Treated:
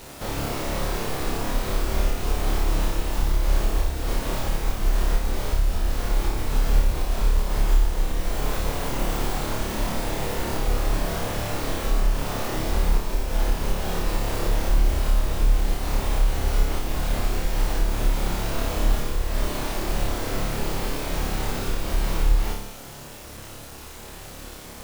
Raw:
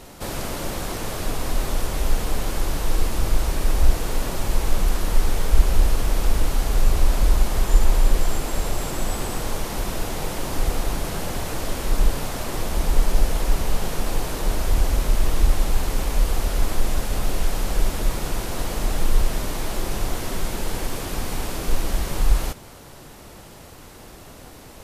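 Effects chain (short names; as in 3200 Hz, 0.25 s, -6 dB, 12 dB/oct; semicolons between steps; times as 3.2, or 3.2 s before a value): tracing distortion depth 0.21 ms; compressor 10:1, threshold -16 dBFS, peak gain reduction 11.5 dB; bit-crush 7-bit; flutter echo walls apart 4.9 m, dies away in 0.63 s; gain -2 dB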